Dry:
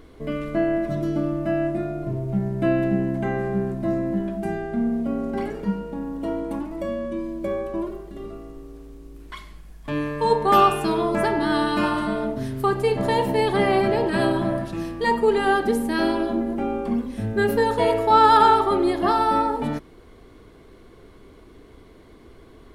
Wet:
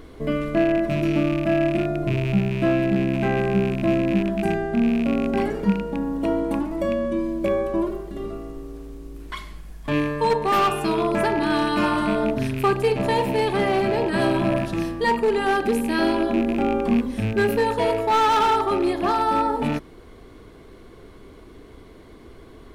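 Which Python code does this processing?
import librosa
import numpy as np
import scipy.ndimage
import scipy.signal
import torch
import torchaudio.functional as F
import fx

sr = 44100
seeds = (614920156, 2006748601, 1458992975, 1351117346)

y = fx.rattle_buzz(x, sr, strikes_db=-28.0, level_db=-26.0)
y = np.clip(y, -10.0 ** (-14.0 / 20.0), 10.0 ** (-14.0 / 20.0))
y = fx.rider(y, sr, range_db=3, speed_s=0.5)
y = y * librosa.db_to_amplitude(1.5)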